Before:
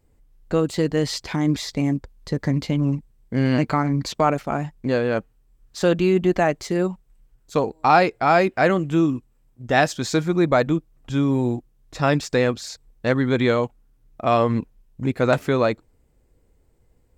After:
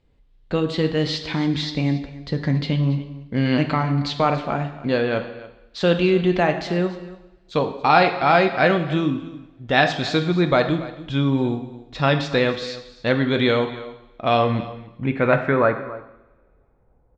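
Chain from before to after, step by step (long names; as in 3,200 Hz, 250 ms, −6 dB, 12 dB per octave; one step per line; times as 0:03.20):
single-tap delay 281 ms −17.5 dB
low-pass filter sweep 3,600 Hz → 840 Hz, 0:14.70–0:16.41
coupled-rooms reverb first 0.86 s, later 2.5 s, from −26 dB, DRR 6.5 dB
level −1 dB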